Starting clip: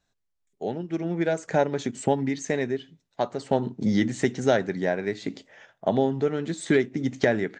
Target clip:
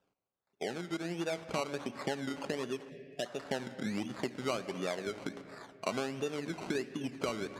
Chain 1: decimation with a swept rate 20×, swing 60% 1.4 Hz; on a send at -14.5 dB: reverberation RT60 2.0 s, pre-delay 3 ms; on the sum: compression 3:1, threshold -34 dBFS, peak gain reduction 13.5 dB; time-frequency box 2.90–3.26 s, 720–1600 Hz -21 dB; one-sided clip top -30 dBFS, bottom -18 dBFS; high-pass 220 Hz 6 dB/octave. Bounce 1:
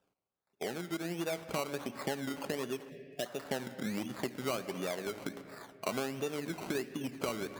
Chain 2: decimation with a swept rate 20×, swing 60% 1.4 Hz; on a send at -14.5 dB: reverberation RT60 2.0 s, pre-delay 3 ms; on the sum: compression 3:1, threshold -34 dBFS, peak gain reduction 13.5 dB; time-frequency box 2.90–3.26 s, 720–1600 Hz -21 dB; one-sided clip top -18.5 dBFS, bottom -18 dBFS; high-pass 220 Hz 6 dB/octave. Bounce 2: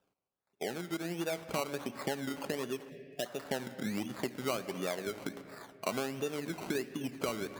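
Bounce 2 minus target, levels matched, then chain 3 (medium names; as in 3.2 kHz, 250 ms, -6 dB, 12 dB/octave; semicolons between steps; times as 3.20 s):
8 kHz band +3.0 dB
decimation with a swept rate 20×, swing 60% 1.4 Hz; on a send at -14.5 dB: reverberation RT60 2.0 s, pre-delay 3 ms; on the sum: compression 3:1, threshold -34 dBFS, peak gain reduction 13.5 dB; low-pass 7.4 kHz 12 dB/octave; time-frequency box 2.90–3.26 s, 720–1600 Hz -21 dB; one-sided clip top -18.5 dBFS, bottom -18 dBFS; high-pass 220 Hz 6 dB/octave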